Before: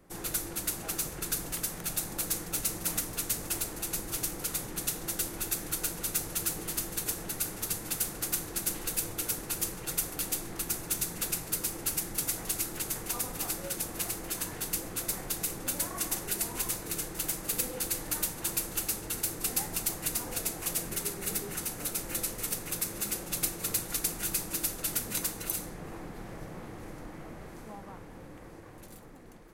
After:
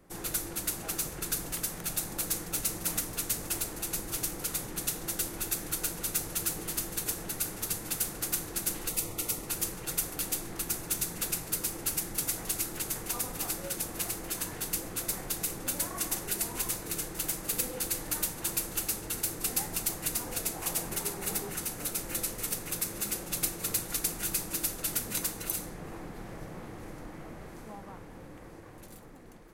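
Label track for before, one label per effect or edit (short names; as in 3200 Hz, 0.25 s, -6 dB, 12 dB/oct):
8.890000	9.480000	Butterworth band-stop 1600 Hz, Q 4.8
20.540000	21.500000	bell 860 Hz +6 dB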